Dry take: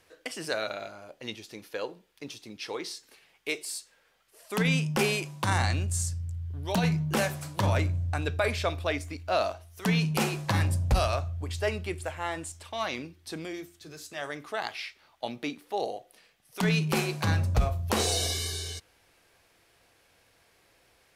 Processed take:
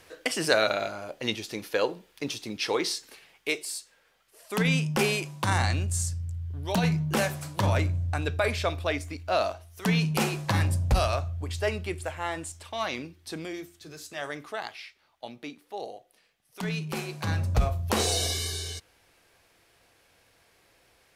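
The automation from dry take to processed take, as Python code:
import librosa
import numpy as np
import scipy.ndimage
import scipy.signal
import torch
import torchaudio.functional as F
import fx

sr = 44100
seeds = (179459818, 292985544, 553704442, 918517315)

y = fx.gain(x, sr, db=fx.line((2.94, 8.5), (3.73, 1.0), (14.4, 1.0), (14.83, -6.0), (17.04, -6.0), (17.59, 1.0)))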